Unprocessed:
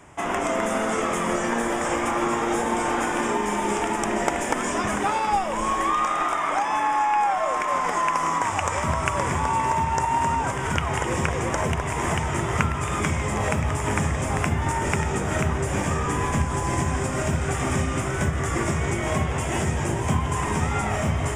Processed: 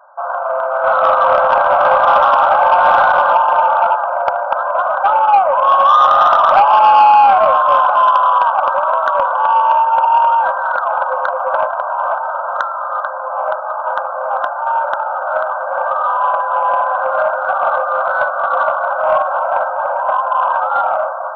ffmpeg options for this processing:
-filter_complex "[0:a]asettb=1/sr,asplit=3[s0][s1][s2];[s0]atrim=end=0.844[s3];[s1]atrim=start=0.84:end=3.95,asetpts=PTS-STARTPTS,afade=t=in:d=0.004:c=qsin,afade=t=out:st=3.106:d=0.004:c=qsin,acontrast=22[s4];[s2]atrim=start=3.946[s5];[s3][s4]acrossfade=d=0.004:c1=hsin:c2=qsin[s6];[s6][s5]acrossfade=d=0.004:c1=qsin:c2=hsin,asettb=1/sr,asplit=3[s7][s8][s9];[s7]atrim=end=4.544[s10];[s8]atrim=start=4.54:end=7.12,asetpts=PTS-STARTPTS,afade=t=in:d=0.004:c=qsin,afade=t=out:st=2.576:d=0.004:c=qsin,lowshelf=f=310:t=q:w=1.5:g=-12.5[s11];[s9]atrim=start=7.116[s12];[s10][s11]acrossfade=d=0.004:c1=hsin:c2=qsin[s13];[s13][s12]acrossfade=d=0.004:c1=qsin:c2=hsin,dynaudnorm=f=360:g=5:m=4.47,afftfilt=real='re*between(b*sr/4096,510,1600)':imag='im*between(b*sr/4096,510,1600)':win_size=4096:overlap=0.75,acontrast=85"

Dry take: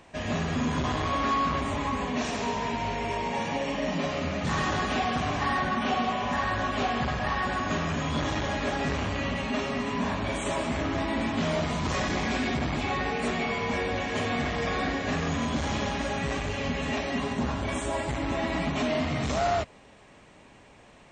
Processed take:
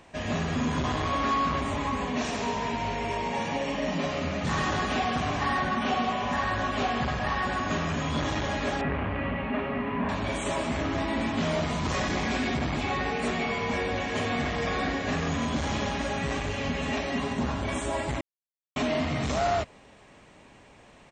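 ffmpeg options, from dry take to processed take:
-filter_complex "[0:a]asettb=1/sr,asplit=3[s0][s1][s2];[s0]atrim=end=8.814[s3];[s1]atrim=start=8.81:end=10.09,asetpts=PTS-STARTPTS,afade=t=in:d=0.004:c=qsin,afade=t=out:st=1.276:d=0.004:c=qsin,lowpass=f=2500:w=0.5412,lowpass=f=2500:w=1.3066[s4];[s2]atrim=start=10.086[s5];[s3][s4]acrossfade=d=0.004:c1=hsin:c2=qsin[s6];[s6][s5]acrossfade=d=0.004:c1=qsin:c2=hsin,asplit=2[s7][s8];[s8]afade=t=in:st=15.78:d=0.01,afade=t=out:st=16.48:d=0.01,aecho=0:1:500|1000|1500|2000:0.158489|0.0713202|0.0320941|0.0144423[s9];[s7][s9]amix=inputs=2:normalize=0,asplit=3[s10][s11][s12];[s10]atrim=end=18.21,asetpts=PTS-STARTPTS,afade=t=out:st=18.206:d=0.004:c=hsin[s13];[s11]atrim=start=18.21:end=18.76,asetpts=PTS-STARTPTS,volume=0[s14];[s12]atrim=start=18.76,asetpts=PTS-STARTPTS,afade=t=in:d=0.004:c=hsin[s15];[s13][s14][s15]concat=n=3:v=0:a=1"

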